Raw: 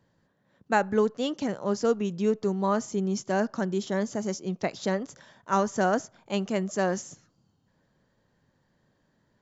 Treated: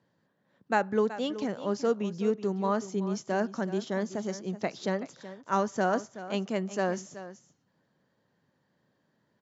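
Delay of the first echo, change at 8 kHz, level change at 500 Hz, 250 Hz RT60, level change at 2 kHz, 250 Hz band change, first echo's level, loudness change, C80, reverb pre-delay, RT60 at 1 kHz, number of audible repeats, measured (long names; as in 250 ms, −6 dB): 376 ms, can't be measured, −2.5 dB, no reverb audible, −2.5 dB, −3.0 dB, −14.0 dB, −2.5 dB, no reverb audible, no reverb audible, no reverb audible, 1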